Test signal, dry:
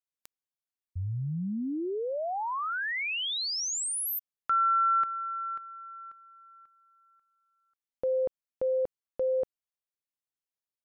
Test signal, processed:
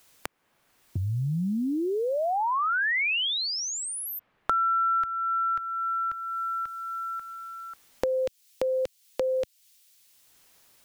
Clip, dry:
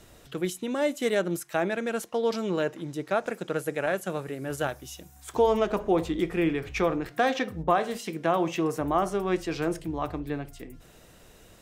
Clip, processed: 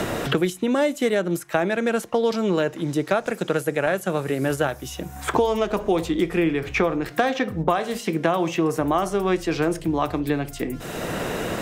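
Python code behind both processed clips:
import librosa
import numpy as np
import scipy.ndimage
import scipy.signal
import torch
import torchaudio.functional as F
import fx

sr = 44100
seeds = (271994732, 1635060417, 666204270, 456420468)

y = fx.band_squash(x, sr, depth_pct=100)
y = y * librosa.db_to_amplitude(4.5)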